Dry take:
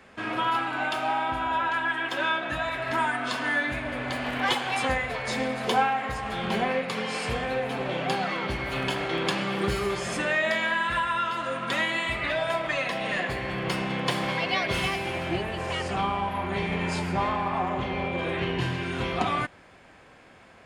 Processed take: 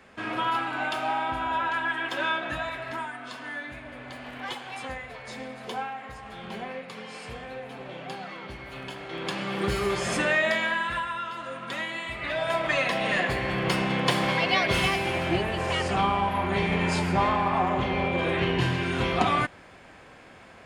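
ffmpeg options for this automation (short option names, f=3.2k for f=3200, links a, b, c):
-af "volume=21dB,afade=t=out:st=2.48:d=0.61:silence=0.354813,afade=t=in:st=9.04:d=1.1:silence=0.223872,afade=t=out:st=10.14:d=1.04:silence=0.354813,afade=t=in:st=12.15:d=0.59:silence=0.354813"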